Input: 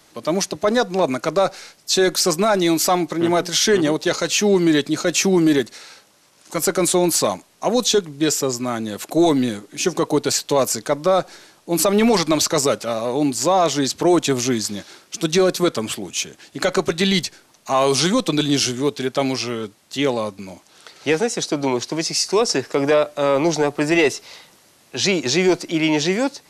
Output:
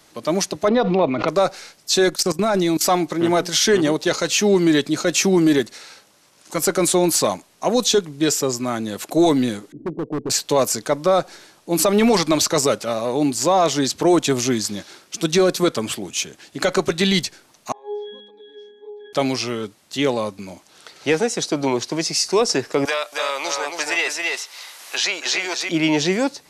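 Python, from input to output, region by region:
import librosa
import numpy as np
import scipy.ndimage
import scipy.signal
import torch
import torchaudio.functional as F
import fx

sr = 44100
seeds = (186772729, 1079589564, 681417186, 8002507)

y = fx.chain(x, sr, fx.lowpass(hz=3400.0, slope=24),
    fx.peak_eq(hz=1600.0, db=-14.0, octaves=0.21),
    fx.pre_swell(db_per_s=30.0), at=(0.68, 1.28))
y = fx.chain(y, sr, fx.low_shelf(hz=290.0, db=6.5),
    fx.level_steps(step_db=18), at=(2.1, 2.81))
y = fx.chain(y, sr, fx.cheby2_lowpass(hz=2500.0, order=4, stop_db=80),
    fx.overload_stage(gain_db=21.0), at=(9.72, 10.3))
y = fx.chain(y, sr, fx.highpass(hz=370.0, slope=24),
    fx.octave_resonator(note='G#', decay_s=0.76),
    fx.sustainer(db_per_s=64.0), at=(17.72, 19.13))
y = fx.chain(y, sr, fx.highpass(hz=960.0, slope=12),
    fx.echo_single(ms=273, db=-5.0),
    fx.band_squash(depth_pct=70), at=(22.85, 25.69))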